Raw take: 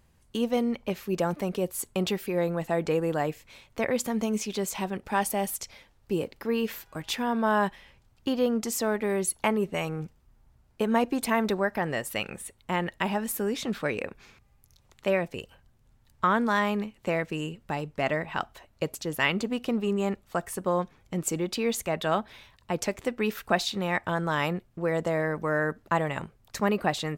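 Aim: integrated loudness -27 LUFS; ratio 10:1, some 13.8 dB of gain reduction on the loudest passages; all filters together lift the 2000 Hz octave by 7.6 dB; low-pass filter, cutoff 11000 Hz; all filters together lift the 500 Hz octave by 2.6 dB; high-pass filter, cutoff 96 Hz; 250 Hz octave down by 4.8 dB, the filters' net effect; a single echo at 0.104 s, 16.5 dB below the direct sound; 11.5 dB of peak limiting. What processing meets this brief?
HPF 96 Hz; LPF 11000 Hz; bell 250 Hz -7.5 dB; bell 500 Hz +4.5 dB; bell 2000 Hz +9 dB; compressor 10:1, threshold -27 dBFS; limiter -22.5 dBFS; echo 0.104 s -16.5 dB; gain +7.5 dB

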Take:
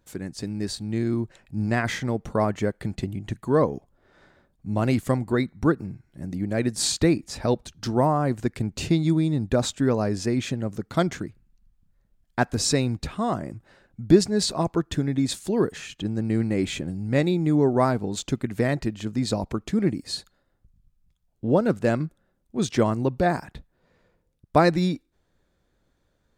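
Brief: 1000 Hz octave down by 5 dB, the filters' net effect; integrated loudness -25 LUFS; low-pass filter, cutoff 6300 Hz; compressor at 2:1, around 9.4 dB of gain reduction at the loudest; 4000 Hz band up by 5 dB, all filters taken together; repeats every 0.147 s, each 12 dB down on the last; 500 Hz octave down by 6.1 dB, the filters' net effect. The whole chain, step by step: LPF 6300 Hz; bell 500 Hz -7.5 dB; bell 1000 Hz -4 dB; bell 4000 Hz +7 dB; compressor 2:1, threshold -30 dBFS; feedback echo 0.147 s, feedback 25%, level -12 dB; gain +6.5 dB

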